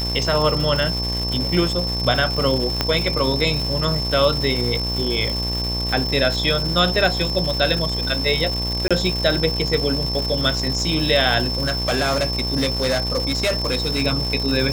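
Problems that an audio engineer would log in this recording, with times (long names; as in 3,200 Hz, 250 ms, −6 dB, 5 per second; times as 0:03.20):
mains buzz 60 Hz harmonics 19 −26 dBFS
surface crackle 400 per second −24 dBFS
whistle 5,300 Hz −24 dBFS
0:02.81: click −4 dBFS
0:08.88–0:08.91: drop-out 26 ms
0:11.48–0:14.03: clipping −16 dBFS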